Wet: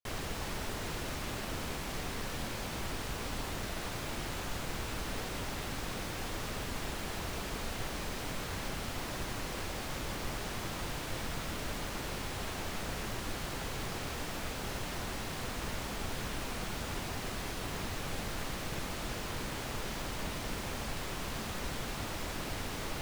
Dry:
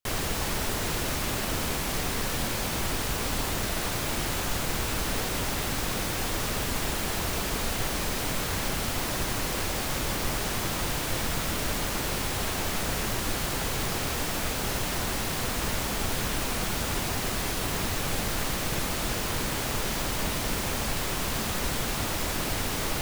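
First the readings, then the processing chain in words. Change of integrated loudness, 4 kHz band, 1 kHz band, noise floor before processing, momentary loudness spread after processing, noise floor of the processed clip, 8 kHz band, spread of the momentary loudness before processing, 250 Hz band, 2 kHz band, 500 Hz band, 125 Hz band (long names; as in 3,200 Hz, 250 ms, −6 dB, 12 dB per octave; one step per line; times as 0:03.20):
−9.5 dB, −9.5 dB, −8.0 dB, −31 dBFS, 0 LU, −40 dBFS, −12.0 dB, 0 LU, −8.0 dB, −8.5 dB, −8.0 dB, −8.0 dB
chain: high-shelf EQ 7,400 Hz −8 dB
level −8 dB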